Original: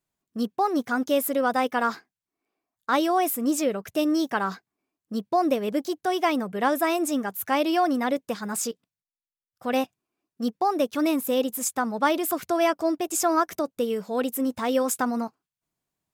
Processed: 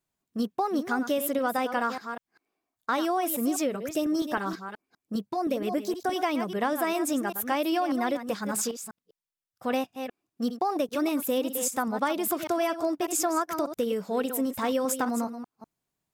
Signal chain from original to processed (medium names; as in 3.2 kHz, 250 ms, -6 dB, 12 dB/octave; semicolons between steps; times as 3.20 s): chunks repeated in reverse 198 ms, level -11 dB; compression, threshold -23 dBFS, peak gain reduction 7 dB; 3.75–6.16 s: LFO notch saw up 6.4 Hz 390–6200 Hz